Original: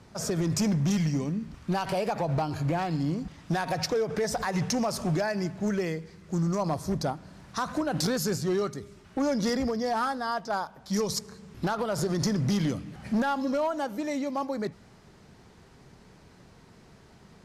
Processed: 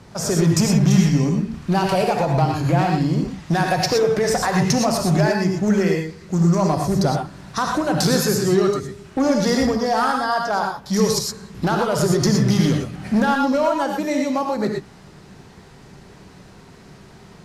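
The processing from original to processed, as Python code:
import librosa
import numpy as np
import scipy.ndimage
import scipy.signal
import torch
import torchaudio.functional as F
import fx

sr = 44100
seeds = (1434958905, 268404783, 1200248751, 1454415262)

y = fx.rev_gated(x, sr, seeds[0], gate_ms=140, shape='rising', drr_db=1.5)
y = y * librosa.db_to_amplitude(7.5)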